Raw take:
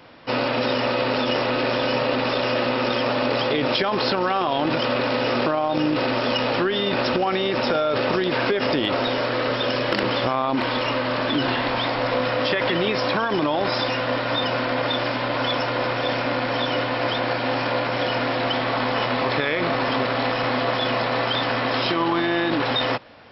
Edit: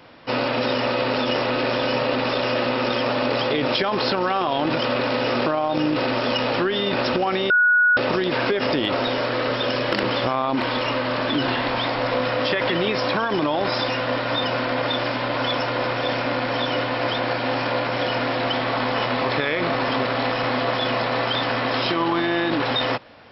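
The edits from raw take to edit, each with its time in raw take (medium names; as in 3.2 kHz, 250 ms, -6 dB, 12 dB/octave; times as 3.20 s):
7.50–7.97 s: bleep 1.46 kHz -13 dBFS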